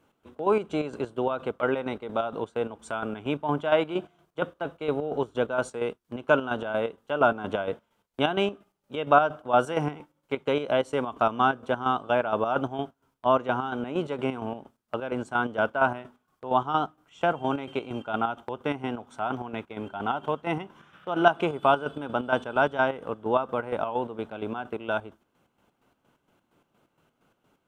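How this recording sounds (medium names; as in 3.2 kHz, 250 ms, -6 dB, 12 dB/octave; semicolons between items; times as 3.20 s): chopped level 4.3 Hz, depth 60%, duty 50%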